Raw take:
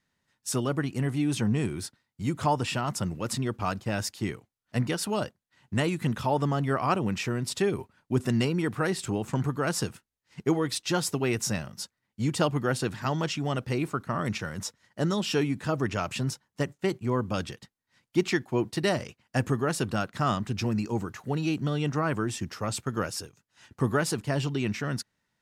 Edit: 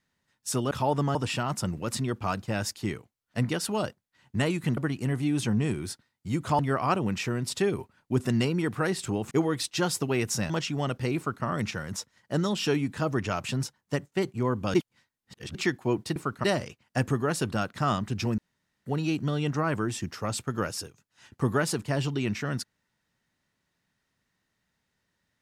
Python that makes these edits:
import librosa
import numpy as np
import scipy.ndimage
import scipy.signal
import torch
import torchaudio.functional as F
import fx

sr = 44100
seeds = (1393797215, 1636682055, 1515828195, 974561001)

y = fx.edit(x, sr, fx.swap(start_s=0.71, length_s=1.82, other_s=6.15, other_length_s=0.44),
    fx.cut(start_s=9.31, length_s=1.12),
    fx.cut(start_s=11.62, length_s=1.55),
    fx.duplicate(start_s=13.84, length_s=0.28, to_s=18.83),
    fx.reverse_span(start_s=17.41, length_s=0.81),
    fx.room_tone_fill(start_s=20.77, length_s=0.48), tone=tone)